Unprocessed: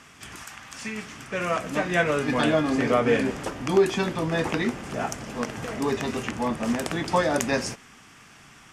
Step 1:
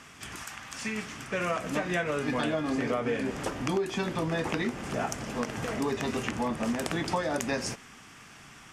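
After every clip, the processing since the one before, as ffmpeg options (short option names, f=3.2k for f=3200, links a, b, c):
-af "acompressor=threshold=-26dB:ratio=6"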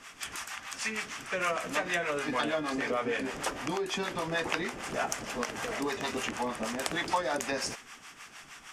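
-filter_complex "[0:a]equalizer=f=110:w=0.37:g=-13,asplit=2[a][b];[b]asoftclip=type=tanh:threshold=-26.5dB,volume=-10.5dB[c];[a][c]amix=inputs=2:normalize=0,acrossover=split=570[d][e];[d]aeval=exprs='val(0)*(1-0.7/2+0.7/2*cos(2*PI*6.5*n/s))':c=same[f];[e]aeval=exprs='val(0)*(1-0.7/2-0.7/2*cos(2*PI*6.5*n/s))':c=same[g];[f][g]amix=inputs=2:normalize=0,volume=3.5dB"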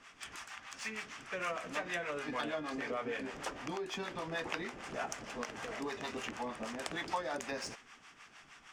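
-af "adynamicsmooth=sensitivity=6.5:basefreq=6.8k,volume=-7dB"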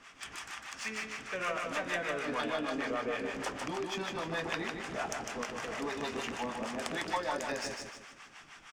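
-filter_complex "[0:a]asplit=2[a][b];[b]aeval=exprs='clip(val(0),-1,0.0141)':c=same,volume=-9.5dB[c];[a][c]amix=inputs=2:normalize=0,aecho=1:1:152|304|456|608|760:0.596|0.238|0.0953|0.0381|0.0152"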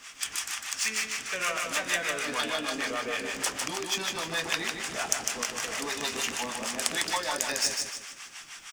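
-af "crystalizer=i=7:c=0,volume=-1dB"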